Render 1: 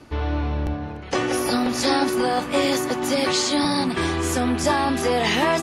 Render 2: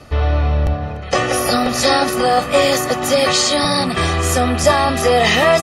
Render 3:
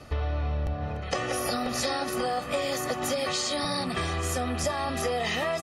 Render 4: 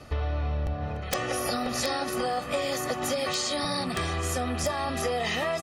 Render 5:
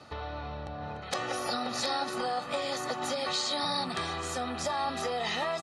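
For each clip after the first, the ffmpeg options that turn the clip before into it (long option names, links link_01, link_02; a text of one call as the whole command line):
ffmpeg -i in.wav -af "aecho=1:1:1.6:0.61,volume=6dB" out.wav
ffmpeg -i in.wav -af "acompressor=threshold=-20dB:ratio=6,volume=-6dB" out.wav
ffmpeg -i in.wav -af "aeval=exprs='(mod(6.68*val(0)+1,2)-1)/6.68':channel_layout=same" out.wav
ffmpeg -i in.wav -af "highpass=120,equalizer=frequency=890:width_type=q:width=4:gain=9,equalizer=frequency=1400:width_type=q:width=4:gain=5,equalizer=frequency=4000:width_type=q:width=4:gain=9,lowpass=frequency=9800:width=0.5412,lowpass=frequency=9800:width=1.3066,volume=-5.5dB" out.wav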